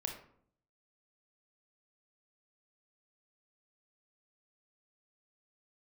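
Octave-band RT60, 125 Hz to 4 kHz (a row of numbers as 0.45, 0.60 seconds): 0.90, 0.80, 0.65, 0.60, 0.45, 0.35 seconds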